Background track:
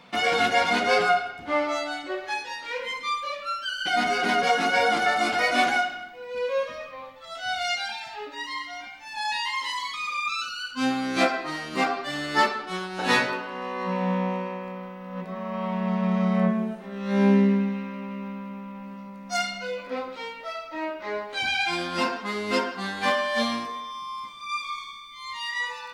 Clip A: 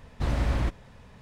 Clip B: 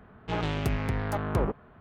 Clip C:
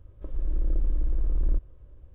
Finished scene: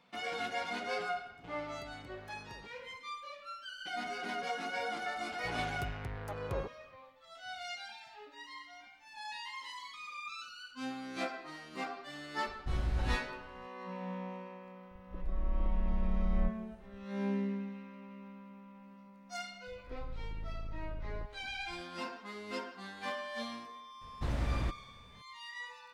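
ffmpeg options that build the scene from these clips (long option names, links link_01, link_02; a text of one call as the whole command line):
ffmpeg -i bed.wav -i cue0.wav -i cue1.wav -i cue2.wav -filter_complex "[2:a]asplit=2[link_01][link_02];[1:a]asplit=2[link_03][link_04];[3:a]asplit=2[link_05][link_06];[0:a]volume=-15.5dB[link_07];[link_01]acompressor=threshold=-42dB:ratio=6:attack=20:release=59:knee=1:detection=peak[link_08];[link_02]equalizer=frequency=230:width_type=o:width=0.72:gain=-7.5[link_09];[link_03]lowshelf=frequency=69:gain=12[link_10];[link_05]agate=range=-33dB:threshold=-45dB:ratio=3:release=100:detection=peak[link_11];[link_06]asoftclip=type=hard:threshold=-29.5dB[link_12];[link_08]atrim=end=1.8,asetpts=PTS-STARTPTS,volume=-12.5dB,afade=type=in:duration=0.004:curve=hsin,afade=type=out:start_time=1.796:duration=0.004:curve=hsin,adelay=1160[link_13];[link_09]atrim=end=1.8,asetpts=PTS-STARTPTS,volume=-11dB,afade=type=in:duration=0.004:curve=hsin,afade=type=out:start_time=1.796:duration=0.004:curve=hsin,adelay=5160[link_14];[link_10]atrim=end=1.21,asetpts=PTS-STARTPTS,volume=-13.5dB,afade=type=in:duration=0.004:curve=hsin,afade=type=out:start_time=1.206:duration=0.004:curve=hsin,adelay=12460[link_15];[link_11]atrim=end=2.14,asetpts=PTS-STARTPTS,volume=-7.5dB,afade=type=in:duration=0.004:curve=hsin,afade=type=out:start_time=2.136:duration=0.004:curve=hsin,adelay=14900[link_16];[link_12]atrim=end=2.14,asetpts=PTS-STARTPTS,volume=-8.5dB,afade=type=in:duration=0.004:curve=hsin,afade=type=out:start_time=2.136:duration=0.004:curve=hsin,adelay=19670[link_17];[link_04]atrim=end=1.21,asetpts=PTS-STARTPTS,volume=-7.5dB,afade=type=in:duration=0.004:curve=hsin,afade=type=out:start_time=1.206:duration=0.004:curve=hsin,adelay=24010[link_18];[link_07][link_13][link_14][link_15][link_16][link_17][link_18]amix=inputs=7:normalize=0" out.wav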